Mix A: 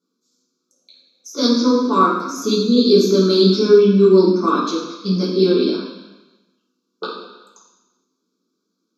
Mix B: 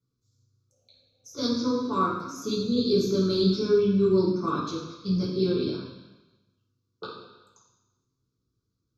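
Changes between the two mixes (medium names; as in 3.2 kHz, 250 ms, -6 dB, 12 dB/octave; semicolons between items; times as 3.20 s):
speech -11.0 dB; master: remove brick-wall FIR high-pass 180 Hz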